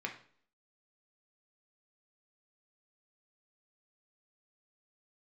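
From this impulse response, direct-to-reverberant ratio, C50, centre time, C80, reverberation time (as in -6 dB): 1.5 dB, 10.0 dB, 15 ms, 15.0 dB, 0.55 s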